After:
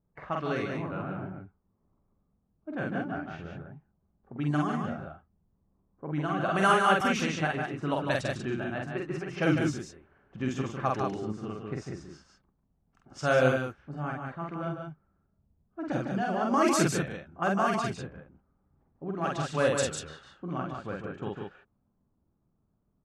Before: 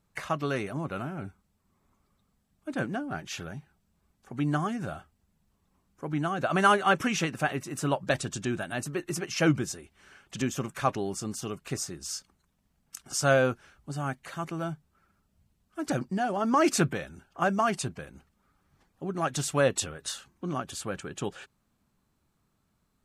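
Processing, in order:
low-pass that shuts in the quiet parts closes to 700 Hz, open at −21 dBFS
loudspeakers that aren't time-aligned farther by 16 metres −2 dB, 52 metres −6 dB, 65 metres −5 dB
level −3.5 dB

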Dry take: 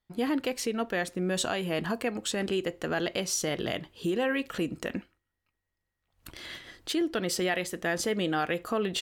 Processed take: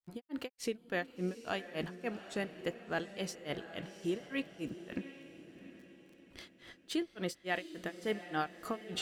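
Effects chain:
surface crackle 37 per second −45 dBFS
granular cloud 217 ms, grains 3.5 per second, spray 23 ms, pitch spread up and down by 0 semitones
feedback delay with all-pass diffusion 747 ms, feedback 41%, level −12 dB
level −4 dB

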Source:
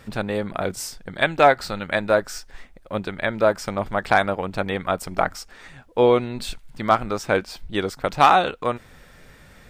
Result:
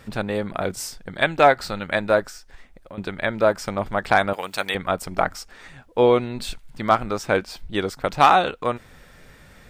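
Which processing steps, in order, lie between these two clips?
0:02.28–0:02.98: downward compressor 6 to 1, threshold −38 dBFS, peak gain reduction 16.5 dB
0:04.33–0:04.75: spectral tilt +4.5 dB per octave

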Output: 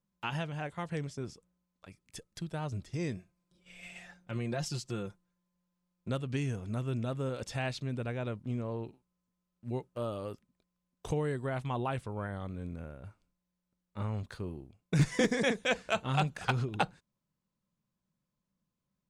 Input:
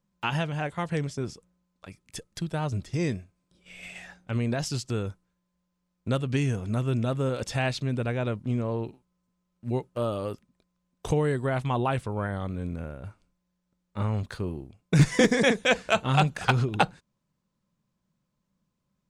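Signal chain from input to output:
0:03.16–0:06.10: comb filter 5.7 ms, depth 61%
level −7.5 dB

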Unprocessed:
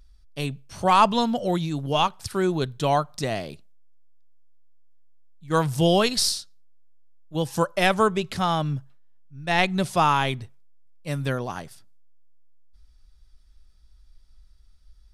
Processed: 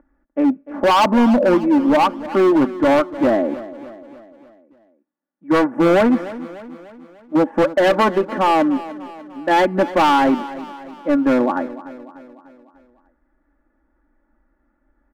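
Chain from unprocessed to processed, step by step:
elliptic band-pass filter 260–1,800 Hz, stop band 40 dB
spectral tilt −3.5 dB per octave
comb filter 3.5 ms, depth 72%
in parallel at −1 dB: brickwall limiter −14.5 dBFS, peak gain reduction 11.5 dB
on the sum: hard clipping −15.5 dBFS, distortion −9 dB
on a send: repeating echo 297 ms, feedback 52%, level −16 dB
on the sum: level +4.5 dB

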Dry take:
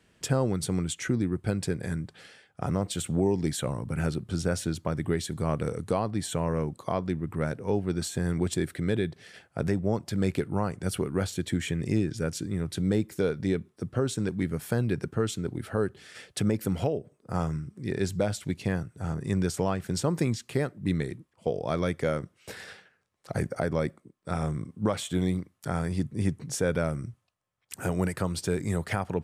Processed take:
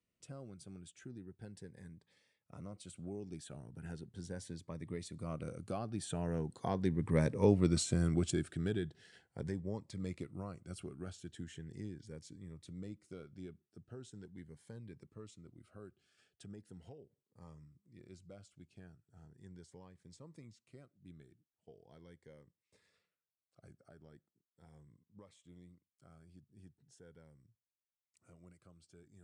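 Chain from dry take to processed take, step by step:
source passing by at 0:07.43, 12 m/s, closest 5.4 metres
downsampling to 22,050 Hz
phaser whose notches keep moving one way rising 0.39 Hz
level +1 dB

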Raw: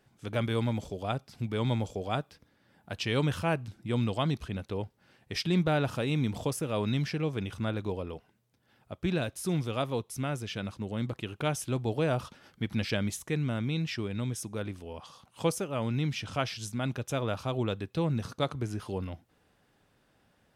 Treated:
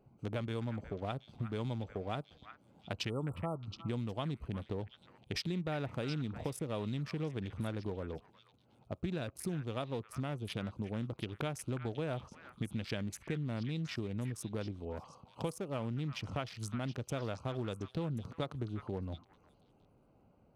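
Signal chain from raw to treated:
adaptive Wiener filter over 25 samples
downward compressor 6 to 1, threshold −38 dBFS, peak gain reduction 15 dB
time-frequency box erased 0:03.09–0:03.61, 1,400–7,500 Hz
echo through a band-pass that steps 361 ms, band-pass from 1,600 Hz, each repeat 1.4 octaves, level −6 dB
level +3 dB

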